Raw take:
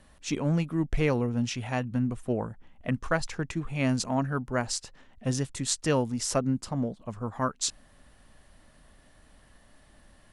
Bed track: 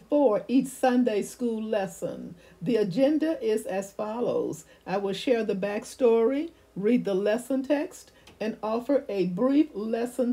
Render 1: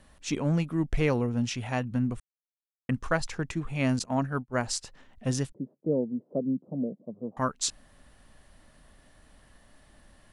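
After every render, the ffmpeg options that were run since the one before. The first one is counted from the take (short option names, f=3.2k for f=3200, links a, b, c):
-filter_complex "[0:a]asettb=1/sr,asplit=3[a][b][c];[a]atrim=end=3.994[d];[b]atrim=start=3.99:end=4.61,asetpts=PTS-STARTPTS,afade=t=in:d=0.004:c=qsin,afade=t=out:st=0.616:d=0.004:c=qsin,agate=range=-33dB:threshold=-29dB:ratio=3:release=100:detection=peak[e];[c]atrim=start=4.606[f];[d][e]acrossfade=d=0.004:c1=hsin:c2=qsin[g];[g][f]acrossfade=d=0.004:c1=qsin:c2=hsin,asettb=1/sr,asplit=3[h][i][j];[h]atrim=end=5.524[k];[i]atrim=start=5.52:end=7.37,asetpts=PTS-STARTPTS,afade=t=in:d=0.004:c=qsin,afade=t=out:st=1.846:d=0.004:c=qsin,asuperpass=centerf=300:order=8:qfactor=0.7[l];[j]atrim=start=7.366[m];[k][l]acrossfade=d=0.004:c1=hsin:c2=qsin[n];[n][m]acrossfade=d=0.004:c1=qsin:c2=hsin,asplit=3[o][p][q];[o]atrim=end=2.2,asetpts=PTS-STARTPTS,afade=t=out:st=2.196:d=0.004:c=hsin[r];[p]atrim=start=2.2:end=2.89,asetpts=PTS-STARTPTS,volume=0[s];[q]atrim=start=2.89,asetpts=PTS-STARTPTS,afade=t=in:d=0.004:c=hsin[t];[r][s][t]concat=n=3:v=0:a=1"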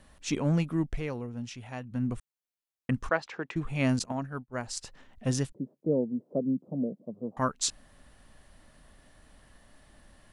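-filter_complex "[0:a]asettb=1/sr,asplit=3[a][b][c];[a]atrim=end=3.094[d];[b]atrim=start=3.09:end=3.56,asetpts=PTS-STARTPTS,afade=t=in:d=0.004:c=qsin,afade=t=out:st=0.466:d=0.004:c=qsin,highpass=310,lowpass=3.1k[e];[c]atrim=start=3.556[f];[d][e]acrossfade=d=0.004:c1=hsin:c2=qsin[g];[g][f]acrossfade=d=0.004:c1=qsin:c2=hsin,asplit=5[h][i][j][k][l];[h]atrim=end=1.02,asetpts=PTS-STARTPTS,afade=t=out:st=0.76:d=0.26:silence=0.334965[m];[i]atrim=start=1.02:end=1.87,asetpts=PTS-STARTPTS,volume=-9.5dB[n];[j]atrim=start=1.87:end=4.122,asetpts=PTS-STARTPTS,afade=t=in:d=0.26:silence=0.334965[o];[k]atrim=start=4.118:end=4.772,asetpts=PTS-STARTPTS,volume=-6.5dB[p];[l]atrim=start=4.768[q];[m][n][o]concat=n=3:v=0:a=1[r];[r][p]acrossfade=d=0.004:c1=hsin:c2=hsin[s];[s][q]acrossfade=d=0.004:c1=hsin:c2=hsin"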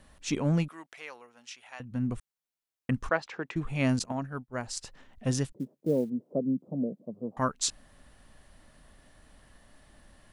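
-filter_complex "[0:a]asettb=1/sr,asplit=3[a][b][c];[a]atrim=end=0.684[d];[b]atrim=start=0.68:end=1.8,asetpts=PTS-STARTPTS,afade=t=in:d=0.004:c=qsin,afade=t=out:st=1.116:d=0.004:c=qsin,highpass=970[e];[c]atrim=start=1.796[f];[d][e]acrossfade=d=0.004:c1=hsin:c2=qsin[g];[g][f]acrossfade=d=0.004:c1=qsin:c2=hsin,asettb=1/sr,asplit=3[h][i][j];[h]atrim=end=5.594[k];[i]atrim=start=5.59:end=6.1,asetpts=PTS-STARTPTS,afade=t=in:d=0.004:c=qsin,afade=t=out:st=0.506:d=0.004:c=qsin,acrusher=bits=8:mode=log:mix=0:aa=0.000001[l];[j]atrim=start=6.096[m];[k][l]acrossfade=d=0.004:c1=hsin:c2=qsin[n];[n][m]acrossfade=d=0.004:c1=qsin:c2=hsin"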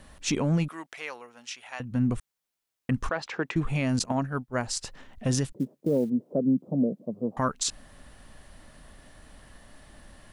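-af "acontrast=60,alimiter=limit=-16.5dB:level=0:latency=1:release=63"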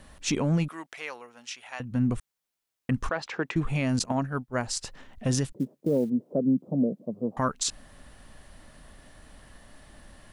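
-af anull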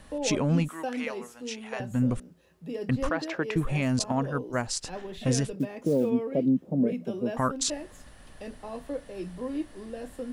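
-filter_complex "[1:a]volume=-10.5dB[a];[0:a][a]amix=inputs=2:normalize=0"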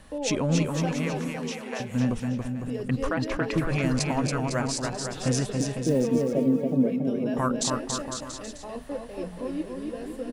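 -af "aecho=1:1:280|504|683.2|826.6|941.2:0.631|0.398|0.251|0.158|0.1"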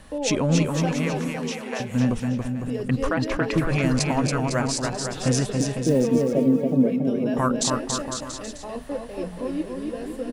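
-af "volume=3.5dB"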